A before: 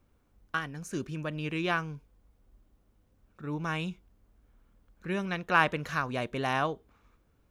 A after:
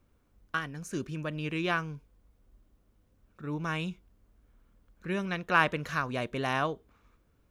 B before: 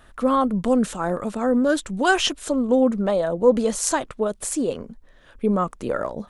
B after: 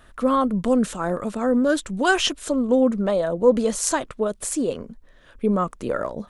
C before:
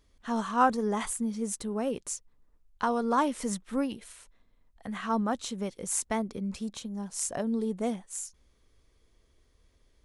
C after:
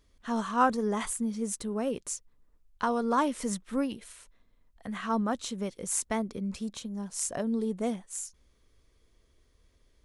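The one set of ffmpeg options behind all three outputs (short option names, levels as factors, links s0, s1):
-af "equalizer=f=810:w=6.1:g=-3.5"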